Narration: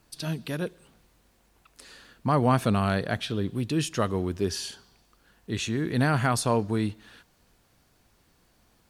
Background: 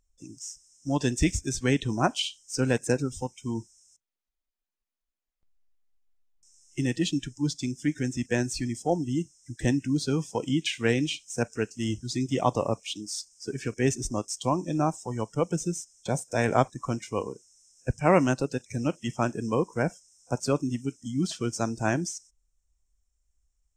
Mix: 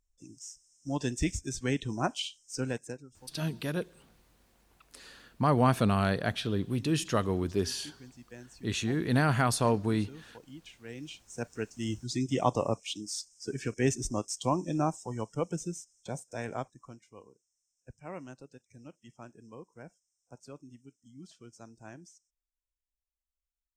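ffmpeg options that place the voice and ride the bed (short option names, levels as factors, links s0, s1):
-filter_complex "[0:a]adelay=3150,volume=0.794[s0];[1:a]volume=4.73,afade=t=out:st=2.54:d=0.47:silence=0.158489,afade=t=in:st=10.86:d=1.32:silence=0.105925,afade=t=out:st=14.58:d=2.44:silence=0.105925[s1];[s0][s1]amix=inputs=2:normalize=0"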